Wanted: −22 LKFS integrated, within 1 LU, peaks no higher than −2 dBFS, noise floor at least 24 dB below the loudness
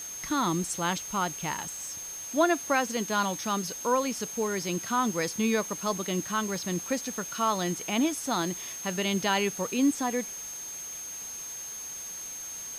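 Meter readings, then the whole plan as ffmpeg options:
interfering tone 6,400 Hz; level of the tone −37 dBFS; background noise floor −39 dBFS; target noise floor −54 dBFS; integrated loudness −29.5 LKFS; sample peak −13.0 dBFS; target loudness −22.0 LKFS
→ -af "bandreject=frequency=6400:width=30"
-af "afftdn=noise_reduction=15:noise_floor=-39"
-af "volume=7.5dB"

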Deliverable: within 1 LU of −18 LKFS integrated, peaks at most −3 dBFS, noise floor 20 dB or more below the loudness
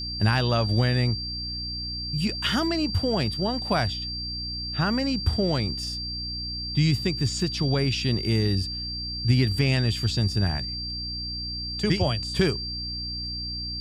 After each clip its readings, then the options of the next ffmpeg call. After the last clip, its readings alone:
mains hum 60 Hz; hum harmonics up to 300 Hz; level of the hum −34 dBFS; interfering tone 4,700 Hz; level of the tone −31 dBFS; integrated loudness −25.5 LKFS; sample peak −9.5 dBFS; target loudness −18.0 LKFS
→ -af "bandreject=frequency=60:width_type=h:width=4,bandreject=frequency=120:width_type=h:width=4,bandreject=frequency=180:width_type=h:width=4,bandreject=frequency=240:width_type=h:width=4,bandreject=frequency=300:width_type=h:width=4"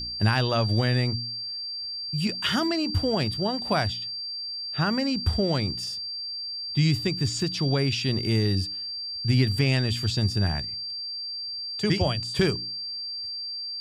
mains hum none found; interfering tone 4,700 Hz; level of the tone −31 dBFS
→ -af "bandreject=frequency=4700:width=30"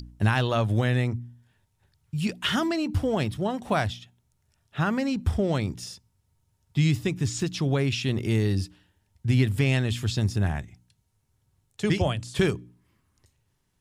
interfering tone none found; integrated loudness −26.5 LKFS; sample peak −10.5 dBFS; target loudness −18.0 LKFS
→ -af "volume=8.5dB,alimiter=limit=-3dB:level=0:latency=1"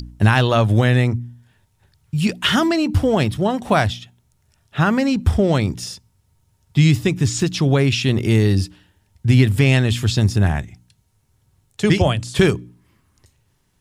integrated loudness −18.0 LKFS; sample peak −3.0 dBFS; background noise floor −64 dBFS

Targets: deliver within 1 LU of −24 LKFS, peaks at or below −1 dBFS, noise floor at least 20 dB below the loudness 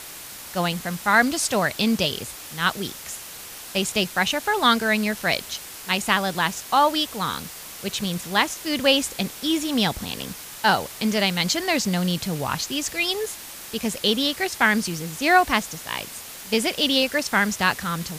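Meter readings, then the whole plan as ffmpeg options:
background noise floor −39 dBFS; target noise floor −43 dBFS; integrated loudness −22.5 LKFS; sample peak −3.5 dBFS; target loudness −24.0 LKFS
→ -af "afftdn=noise_reduction=6:noise_floor=-39"
-af "volume=-1.5dB"

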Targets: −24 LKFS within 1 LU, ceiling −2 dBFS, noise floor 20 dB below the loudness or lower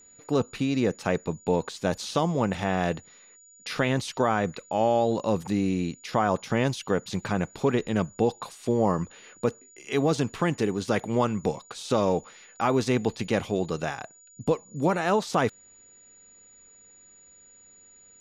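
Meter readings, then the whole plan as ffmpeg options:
interfering tone 6,900 Hz; level of the tone −52 dBFS; integrated loudness −27.0 LKFS; sample peak −9.5 dBFS; target loudness −24.0 LKFS
→ -af "bandreject=frequency=6900:width=30"
-af "volume=3dB"

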